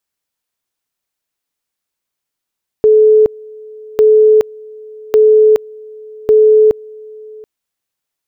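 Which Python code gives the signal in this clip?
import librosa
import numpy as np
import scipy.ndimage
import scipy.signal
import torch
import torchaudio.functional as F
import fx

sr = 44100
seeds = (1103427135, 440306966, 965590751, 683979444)

y = fx.two_level_tone(sr, hz=431.0, level_db=-4.0, drop_db=25.5, high_s=0.42, low_s=0.73, rounds=4)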